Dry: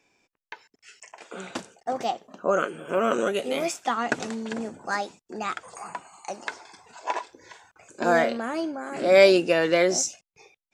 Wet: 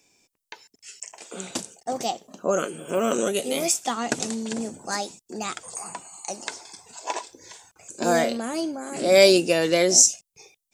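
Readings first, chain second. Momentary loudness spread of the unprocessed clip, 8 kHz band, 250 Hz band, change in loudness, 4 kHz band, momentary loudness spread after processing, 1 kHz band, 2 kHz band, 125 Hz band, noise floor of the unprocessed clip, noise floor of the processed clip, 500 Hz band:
18 LU, +11.5 dB, +2.0 dB, +2.0 dB, +6.0 dB, 22 LU, -1.5 dB, -2.0 dB, +3.0 dB, under -85 dBFS, -81 dBFS, 0.0 dB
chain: FFT filter 200 Hz 0 dB, 800 Hz -4 dB, 1.5 kHz -8 dB, 8.4 kHz +11 dB; trim +3 dB

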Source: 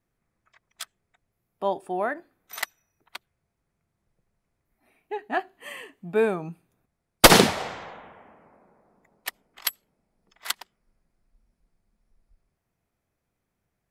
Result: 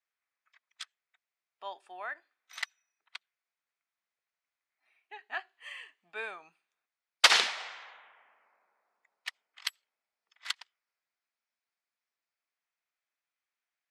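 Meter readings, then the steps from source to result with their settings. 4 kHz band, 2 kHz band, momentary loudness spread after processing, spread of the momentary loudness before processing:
-4.0 dB, -5.0 dB, 25 LU, 25 LU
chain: Bessel high-pass 2.1 kHz, order 2; distance through air 110 m

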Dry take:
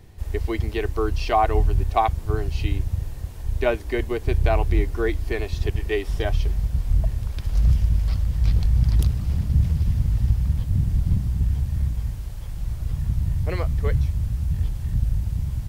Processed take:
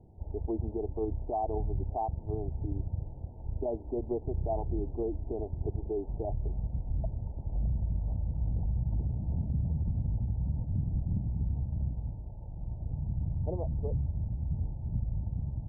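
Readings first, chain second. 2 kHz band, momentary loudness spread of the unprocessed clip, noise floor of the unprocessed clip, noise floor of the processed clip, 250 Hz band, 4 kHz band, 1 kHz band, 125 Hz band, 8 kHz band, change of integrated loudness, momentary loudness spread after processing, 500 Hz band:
under -40 dB, 8 LU, -34 dBFS, -44 dBFS, -6.5 dB, under -40 dB, -13.0 dB, -10.0 dB, no reading, -10.5 dB, 5 LU, -9.0 dB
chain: bass shelf 71 Hz -8 dB; peak limiter -17.5 dBFS, peak gain reduction 10 dB; rippled Chebyshev low-pass 920 Hz, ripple 3 dB; trim -3 dB

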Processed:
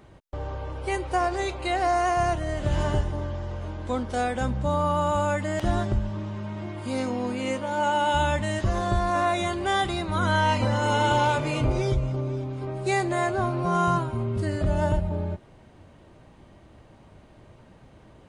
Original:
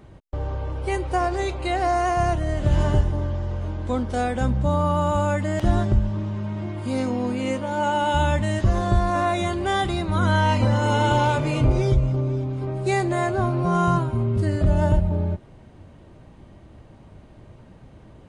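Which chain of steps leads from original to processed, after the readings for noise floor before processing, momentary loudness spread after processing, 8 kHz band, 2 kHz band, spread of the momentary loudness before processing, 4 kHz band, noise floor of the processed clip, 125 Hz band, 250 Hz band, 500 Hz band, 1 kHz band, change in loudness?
-48 dBFS, 10 LU, 0.0 dB, -0.5 dB, 8 LU, 0.0 dB, -53 dBFS, -6.0 dB, -4.5 dB, -2.0 dB, -1.0 dB, -3.0 dB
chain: bass shelf 360 Hz -6.5 dB

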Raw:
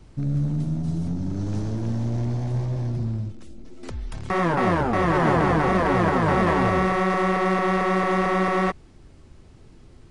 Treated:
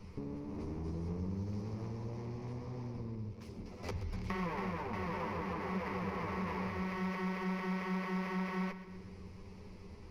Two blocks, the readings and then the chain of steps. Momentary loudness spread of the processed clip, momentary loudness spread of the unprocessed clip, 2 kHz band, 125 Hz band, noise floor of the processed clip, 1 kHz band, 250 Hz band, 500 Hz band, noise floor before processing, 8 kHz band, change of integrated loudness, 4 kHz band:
12 LU, 9 LU, -16.5 dB, -15.5 dB, -51 dBFS, -18.5 dB, -14.0 dB, -18.5 dB, -49 dBFS, -16.0 dB, -17.0 dB, -14.5 dB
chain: comb filter that takes the minimum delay 10 ms; peaking EQ 8.3 kHz -7 dB 0.89 oct; compression 12:1, threshold -36 dBFS, peak gain reduction 18.5 dB; rippled EQ curve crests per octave 0.84, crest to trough 9 dB; two-band feedback delay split 340 Hz, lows 305 ms, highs 126 ms, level -13 dB; trim -1.5 dB

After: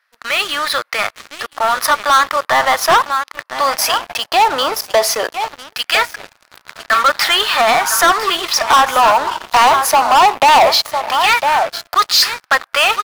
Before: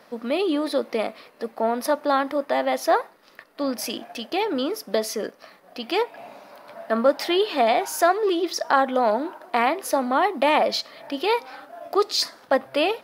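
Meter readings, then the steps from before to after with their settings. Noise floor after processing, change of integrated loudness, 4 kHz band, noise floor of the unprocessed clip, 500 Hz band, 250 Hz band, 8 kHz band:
-61 dBFS, +10.0 dB, +14.0 dB, -54 dBFS, +3.0 dB, -5.0 dB, +15.0 dB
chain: LFO high-pass saw down 0.18 Hz 800–1600 Hz; delay 1003 ms -13 dB; waveshaping leveller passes 5; trim -3.5 dB

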